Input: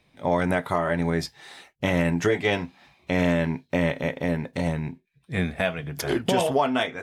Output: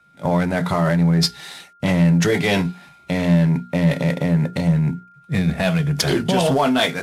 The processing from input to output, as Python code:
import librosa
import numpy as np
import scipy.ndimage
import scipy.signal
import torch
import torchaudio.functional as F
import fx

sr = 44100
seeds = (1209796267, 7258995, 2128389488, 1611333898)

p1 = fx.cvsd(x, sr, bps=64000)
p2 = fx.dynamic_eq(p1, sr, hz=4300.0, q=2.1, threshold_db=-48.0, ratio=4.0, max_db=6)
p3 = p2 + 10.0 ** (-51.0 / 20.0) * np.sin(2.0 * np.pi * 1400.0 * np.arange(len(p2)) / sr)
p4 = fx.peak_eq(p3, sr, hz=170.0, db=12.0, octaves=0.48)
p5 = fx.over_compress(p4, sr, threshold_db=-25.0, ratio=-1.0)
p6 = p4 + (p5 * 10.0 ** (0.0 / 20.0))
p7 = fx.hum_notches(p6, sr, base_hz=60, count=7)
p8 = 10.0 ** (-7.5 / 20.0) * np.tanh(p7 / 10.0 ** (-7.5 / 20.0))
y = fx.band_widen(p8, sr, depth_pct=40)